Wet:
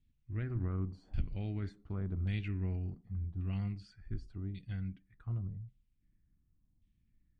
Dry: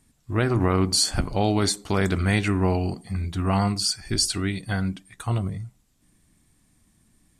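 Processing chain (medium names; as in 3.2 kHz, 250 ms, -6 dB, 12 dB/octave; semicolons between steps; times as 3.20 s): LFO low-pass saw down 0.88 Hz 800–3300 Hz; amplifier tone stack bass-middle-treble 10-0-1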